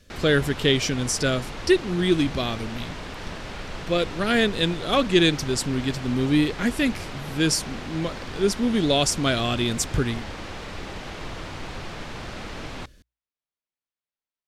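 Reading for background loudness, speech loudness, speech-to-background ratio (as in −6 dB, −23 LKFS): −36.0 LKFS, −23.5 LKFS, 12.5 dB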